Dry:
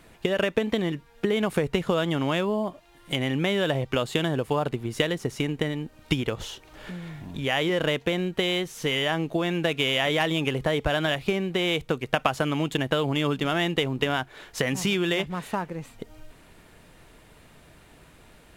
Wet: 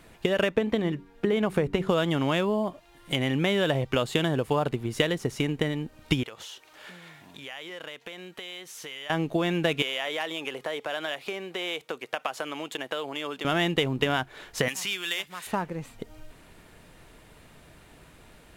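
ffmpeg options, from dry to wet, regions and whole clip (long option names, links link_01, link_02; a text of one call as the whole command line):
ffmpeg -i in.wav -filter_complex "[0:a]asettb=1/sr,asplit=3[link_01][link_02][link_03];[link_01]atrim=end=0.494[link_04];[link_02]atrim=start=0.49:end=1.89,asetpts=PTS-STARTPTS,afade=type=in:duration=0.004:curve=qsin,afade=type=out:start_time=1.396:duration=0.004:curve=qsin,highshelf=frequency=2700:gain=-7.5,bandreject=frequency=95.19:width_type=h:width=4,bandreject=frequency=190.38:width_type=h:width=4,bandreject=frequency=285.57:width_type=h:width=4,bandreject=frequency=380.76:width_type=h:width=4[link_05];[link_03]atrim=start=1.886[link_06];[link_04][link_05]acrossfade=duration=0.004:curve1=hsin:curve2=qsin[link_07];[link_07][link_06]acrossfade=duration=0.004:curve1=qsin:curve2=hsin,asettb=1/sr,asplit=3[link_08][link_09][link_10];[link_08]atrim=end=6.234[link_11];[link_09]atrim=start=6.23:end=9.1,asetpts=PTS-STARTPTS,afade=type=in:duration=0.004:curve=qsin,afade=type=out:start_time=2.866:duration=0.004:curve=qsin,highpass=frequency=1000:poles=1,acompressor=threshold=-39dB:ratio=3:attack=3.2:release=140:knee=1:detection=peak[link_12];[link_10]atrim=start=9.096[link_13];[link_11][link_12]acrossfade=duration=0.004:curve1=hsin:curve2=qsin[link_14];[link_14][link_13]acrossfade=duration=0.004:curve1=qsin:curve2=hsin,asettb=1/sr,asplit=3[link_15][link_16][link_17];[link_15]atrim=end=9.824[link_18];[link_16]atrim=start=9.82:end=13.45,asetpts=PTS-STARTPTS,afade=type=in:duration=0.004:curve=qsin,afade=type=out:start_time=3.626:duration=0.004:curve=qsin,highpass=430,acompressor=threshold=-36dB:ratio=1.5:attack=3.2:release=140:knee=1:detection=peak[link_19];[link_17]atrim=start=13.446[link_20];[link_18][link_19]acrossfade=duration=0.004:curve1=hsin:curve2=qsin[link_21];[link_21][link_20]acrossfade=duration=0.004:curve1=qsin:curve2=hsin,asettb=1/sr,asplit=3[link_22][link_23][link_24];[link_22]atrim=end=14.684[link_25];[link_23]atrim=start=14.68:end=15.47,asetpts=PTS-STARTPTS,afade=type=in:duration=0.004:curve=qsin,afade=type=out:start_time=0.786:duration=0.004:curve=qsin,highpass=frequency=580:poles=1,aemphasis=mode=production:type=cd,acrossover=split=1100|4100[link_26][link_27][link_28];[link_26]acompressor=threshold=-44dB:ratio=4[link_29];[link_27]acompressor=threshold=-28dB:ratio=4[link_30];[link_28]acompressor=threshold=-36dB:ratio=4[link_31];[link_29][link_30][link_31]amix=inputs=3:normalize=0[link_32];[link_24]atrim=start=15.466[link_33];[link_25][link_32]acrossfade=duration=0.004:curve1=hsin:curve2=qsin[link_34];[link_34][link_33]acrossfade=duration=0.004:curve1=qsin:curve2=hsin" out.wav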